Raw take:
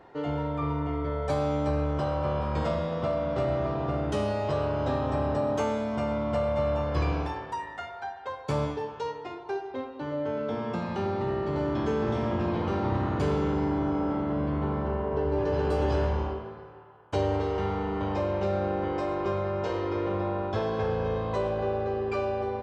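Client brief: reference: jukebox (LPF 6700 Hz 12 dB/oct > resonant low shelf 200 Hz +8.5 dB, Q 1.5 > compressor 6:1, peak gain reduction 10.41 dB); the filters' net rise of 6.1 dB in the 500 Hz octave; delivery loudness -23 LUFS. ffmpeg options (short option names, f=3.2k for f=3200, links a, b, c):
-af "lowpass=6.7k,lowshelf=f=200:t=q:w=1.5:g=8.5,equalizer=f=500:t=o:g=9,acompressor=threshold=-24dB:ratio=6,volume=5.5dB"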